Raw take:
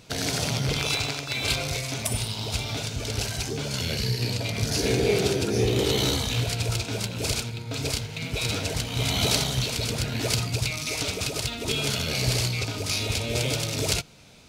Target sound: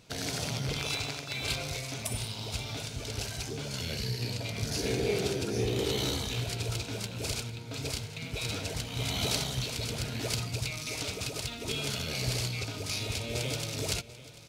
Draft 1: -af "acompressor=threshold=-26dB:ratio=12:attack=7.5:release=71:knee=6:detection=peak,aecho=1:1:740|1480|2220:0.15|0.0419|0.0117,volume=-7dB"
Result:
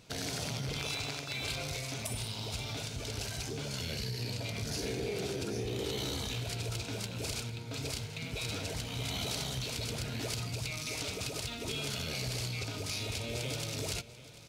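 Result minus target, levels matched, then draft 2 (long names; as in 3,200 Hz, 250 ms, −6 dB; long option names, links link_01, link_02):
downward compressor: peak gain reduction +9.5 dB
-af "aecho=1:1:740|1480|2220:0.15|0.0419|0.0117,volume=-7dB"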